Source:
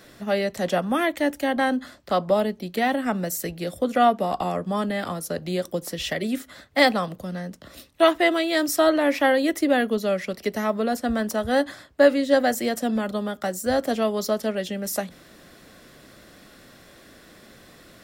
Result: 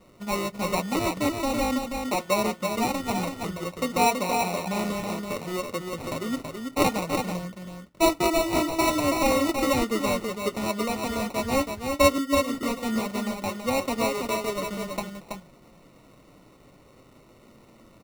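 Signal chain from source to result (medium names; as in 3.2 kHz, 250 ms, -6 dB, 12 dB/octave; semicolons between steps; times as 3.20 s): level-controlled noise filter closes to 1.9 kHz, open at -16.5 dBFS; 12.18–12.63 s: inverse Chebyshev band-stop 1–5.8 kHz, stop band 50 dB; sample-and-hold 27×; flange 0.13 Hz, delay 5.3 ms, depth 5.9 ms, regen -48%; delay 328 ms -5 dB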